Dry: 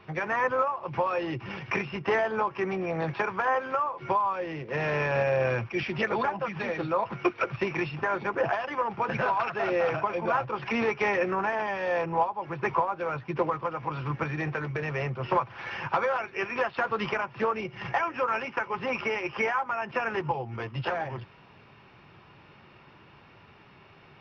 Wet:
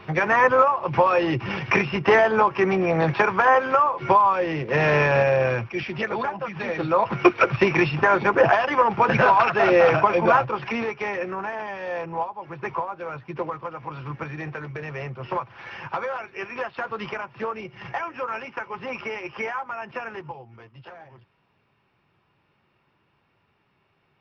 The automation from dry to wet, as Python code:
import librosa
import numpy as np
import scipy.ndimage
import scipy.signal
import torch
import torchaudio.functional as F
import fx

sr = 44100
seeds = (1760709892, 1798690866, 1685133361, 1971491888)

y = fx.gain(x, sr, db=fx.line((4.96, 9.0), (5.82, 1.0), (6.51, 1.0), (7.21, 10.0), (10.28, 10.0), (10.92, -2.0), (19.9, -2.0), (20.72, -13.5)))